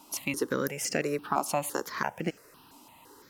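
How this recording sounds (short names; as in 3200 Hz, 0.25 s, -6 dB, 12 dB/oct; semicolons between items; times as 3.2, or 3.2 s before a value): a quantiser's noise floor 12-bit, dither none; notches that jump at a steady rate 5.9 Hz 480–3700 Hz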